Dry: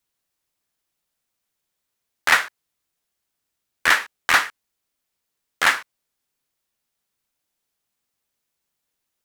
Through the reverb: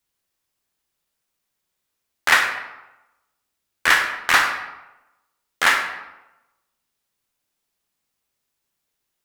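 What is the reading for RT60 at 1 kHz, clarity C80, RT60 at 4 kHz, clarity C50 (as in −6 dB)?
1.0 s, 8.5 dB, 0.65 s, 5.5 dB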